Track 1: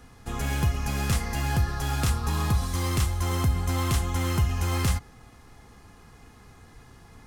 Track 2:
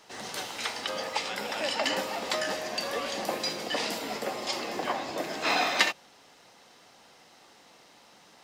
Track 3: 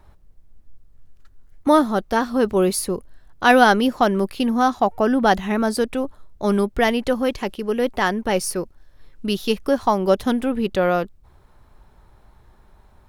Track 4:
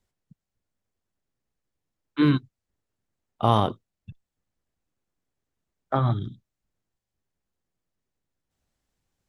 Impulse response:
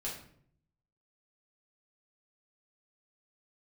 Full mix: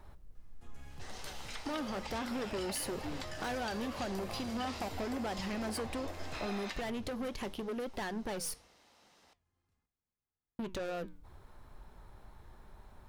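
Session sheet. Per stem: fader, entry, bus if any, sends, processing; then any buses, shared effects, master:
−11.0 dB, 0.35 s, bus A, no send, echo send −10 dB, high-shelf EQ 11,000 Hz −9 dB; automatic ducking −12 dB, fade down 1.00 s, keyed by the third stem
−4.5 dB, 0.90 s, no bus, no send, no echo send, downward compressor 5 to 1, threshold −33 dBFS, peak gain reduction 13.5 dB
+2.0 dB, 0.00 s, muted 0:08.54–0:10.59, bus A, no send, no echo send, downward compressor, threshold −20 dBFS, peak gain reduction 11.5 dB
−16.0 dB, 0.85 s, bus A, no send, no echo send, no processing
bus A: 0.0 dB, soft clipping −26 dBFS, distortion −7 dB; downward compressor, threshold −32 dBFS, peak gain reduction 5 dB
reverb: not used
echo: repeating echo 1,123 ms, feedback 28%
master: mains-hum notches 60/120/180 Hz; flanger 0.76 Hz, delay 4.6 ms, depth 7.6 ms, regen −85%

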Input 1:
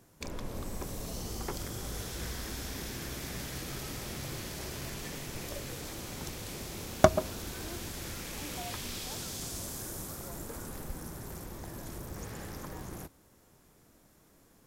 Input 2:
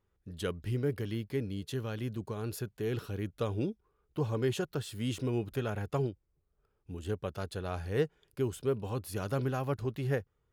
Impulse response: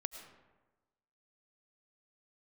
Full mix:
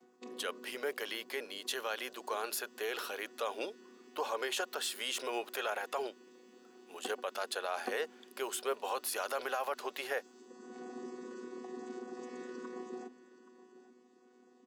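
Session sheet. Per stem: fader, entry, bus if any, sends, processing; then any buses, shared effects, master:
0.0 dB, 0.00 s, no send, echo send −16 dB, channel vocoder with a chord as carrier bare fifth, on B3; mains-hum notches 50/100/150/200/250 Hz; automatic ducking −22 dB, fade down 1.40 s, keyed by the second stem
+0.5 dB, 0.00 s, no send, no echo send, high-pass filter 590 Hz 24 dB per octave; automatic gain control gain up to 9 dB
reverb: not used
echo: single-tap delay 825 ms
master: brickwall limiter −25 dBFS, peak gain reduction 9.5 dB

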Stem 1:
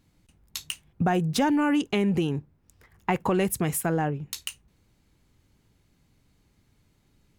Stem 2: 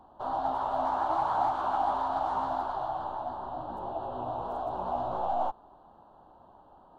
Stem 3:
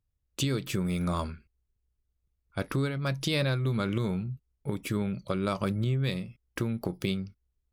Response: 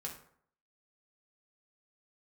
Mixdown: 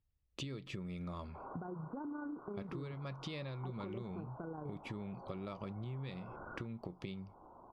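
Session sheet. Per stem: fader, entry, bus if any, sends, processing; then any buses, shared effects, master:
−1.5 dB, 0.55 s, bus A, no send, amplitude modulation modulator 28 Hz, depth 35%
+2.0 dB, 1.15 s, bus A, no send, wave folding −32.5 dBFS; downward compressor, threshold −40 dBFS, peak gain reduction 5 dB; soft clipping −38 dBFS, distortion −21 dB
−2.5 dB, 0.00 s, no bus, no send, notch filter 1,500 Hz, Q 5.8
bus A: 0.0 dB, Chebyshev low-pass with heavy ripple 1,500 Hz, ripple 6 dB; brickwall limiter −26 dBFS, peak gain reduction 8 dB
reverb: not used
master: low-pass filter 3,700 Hz 12 dB per octave; downward compressor 4 to 1, threshold −43 dBFS, peak gain reduction 15 dB

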